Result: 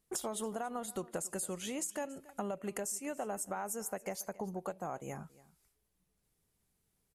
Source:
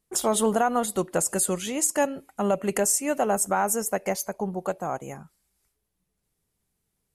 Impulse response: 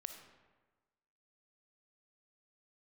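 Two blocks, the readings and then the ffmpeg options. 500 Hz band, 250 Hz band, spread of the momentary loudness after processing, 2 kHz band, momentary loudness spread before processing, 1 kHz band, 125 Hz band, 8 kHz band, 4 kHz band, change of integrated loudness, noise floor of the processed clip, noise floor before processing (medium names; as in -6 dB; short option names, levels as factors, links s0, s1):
-14.0 dB, -13.0 dB, 5 LU, -14.0 dB, 8 LU, -14.5 dB, -12.0 dB, -14.0 dB, -12.0 dB, -14.0 dB, -80 dBFS, -79 dBFS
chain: -af "acompressor=threshold=0.0178:ratio=6,aecho=1:1:280:0.0944,volume=0.841"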